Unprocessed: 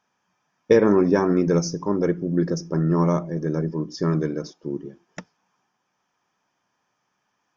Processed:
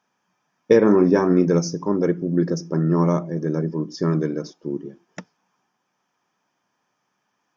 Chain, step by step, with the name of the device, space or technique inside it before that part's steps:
filter by subtraction (in parallel: low-pass filter 200 Hz 12 dB per octave + polarity inversion)
0:00.83–0:01.45: on the sum: double-tracking delay 33 ms −11.5 dB

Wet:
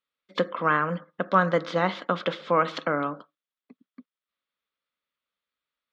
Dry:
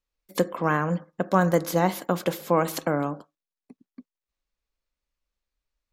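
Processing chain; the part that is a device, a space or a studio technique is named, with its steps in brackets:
kitchen radio (loudspeaker in its box 210–4,200 Hz, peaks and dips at 350 Hz −6 dB, 790 Hz −6 dB, 1,300 Hz +8 dB, 2,000 Hz +3 dB, 3,400 Hz +7 dB)

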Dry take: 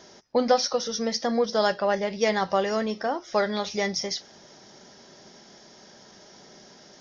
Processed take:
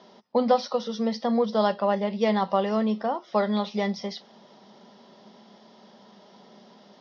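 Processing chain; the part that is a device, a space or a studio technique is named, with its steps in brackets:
kitchen radio (loudspeaker in its box 210–3,900 Hz, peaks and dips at 210 Hz +10 dB, 320 Hz −7 dB, 1,000 Hz +4 dB, 1,600 Hz −9 dB, 2,300 Hz −6 dB)

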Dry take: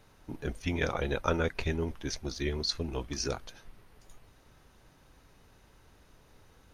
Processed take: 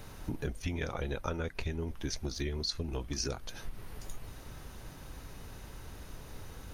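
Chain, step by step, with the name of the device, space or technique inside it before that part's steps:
ASMR close-microphone chain (low-shelf EQ 190 Hz +5.5 dB; downward compressor 6 to 1, threshold −43 dBFS, peak gain reduction 19.5 dB; high-shelf EQ 8,400 Hz +7.5 dB)
level +9.5 dB

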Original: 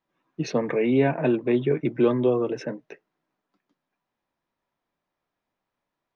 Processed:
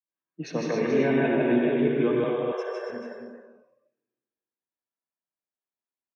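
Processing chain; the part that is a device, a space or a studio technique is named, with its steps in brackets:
stadium PA (high-pass filter 140 Hz; parametric band 1,600 Hz +5 dB 0.39 octaves; loudspeakers that aren't time-aligned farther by 53 metres −1 dB, 67 metres −9 dB, 87 metres −8 dB; convolution reverb RT60 1.6 s, pre-delay 60 ms, DRR 2 dB)
0:02.24–0:02.90: high-pass filter 490 Hz 24 dB per octave
noise reduction from a noise print of the clip's start 20 dB
single-tap delay 279 ms −7 dB
level −6.5 dB

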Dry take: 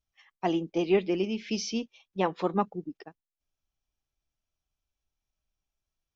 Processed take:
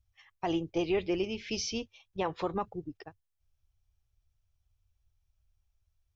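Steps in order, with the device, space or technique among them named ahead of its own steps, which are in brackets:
car stereo with a boomy subwoofer (low shelf with overshoot 140 Hz +12 dB, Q 3; brickwall limiter −20.5 dBFS, peak gain reduction 7 dB)

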